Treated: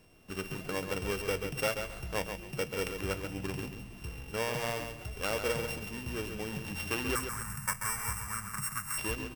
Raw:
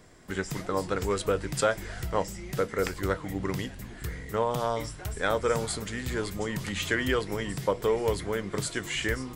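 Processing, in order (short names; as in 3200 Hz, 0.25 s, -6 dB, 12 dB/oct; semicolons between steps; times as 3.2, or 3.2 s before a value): sample sorter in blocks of 16 samples; 7.15–8.98 EQ curve 120 Hz 0 dB, 230 Hz -7 dB, 350 Hz -29 dB, 540 Hz -20 dB, 1200 Hz +11 dB, 2100 Hz +2 dB, 3200 Hz -17 dB, 8100 Hz +12 dB, 14000 Hz +7 dB; feedback echo 0.136 s, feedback 24%, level -7 dB; gain -6.5 dB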